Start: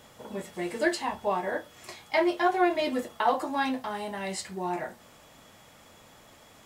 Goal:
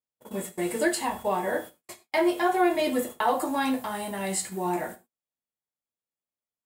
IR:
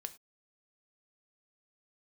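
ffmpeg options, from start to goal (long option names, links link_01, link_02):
-filter_complex "[0:a]agate=range=-51dB:threshold=-41dB:ratio=16:detection=peak,aexciter=amount=3.6:drive=6.1:freq=7600,asplit=2[link_01][link_02];[link_02]alimiter=limit=-19.5dB:level=0:latency=1:release=145,volume=1dB[link_03];[link_01][link_03]amix=inputs=2:normalize=0,equalizer=frequency=330:width_type=o:width=1.6:gain=2.5[link_04];[1:a]atrim=start_sample=2205[link_05];[link_04][link_05]afir=irnorm=-1:irlink=0,volume=-1.5dB"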